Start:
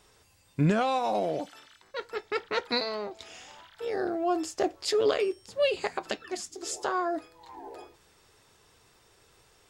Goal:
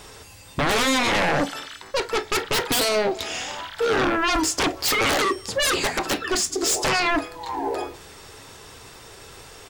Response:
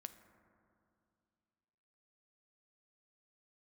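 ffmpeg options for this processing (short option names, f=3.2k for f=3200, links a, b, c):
-filter_complex "[0:a]aeval=exprs='0.188*sin(PI/2*7.08*val(0)/0.188)':c=same,asplit=2[a][b];[b]adelay=186.6,volume=-27dB,highshelf=f=4k:g=-4.2[c];[a][c]amix=inputs=2:normalize=0[d];[1:a]atrim=start_sample=2205,atrim=end_sample=3087,asetrate=57330,aresample=44100[e];[d][e]afir=irnorm=-1:irlink=0,volume=5dB"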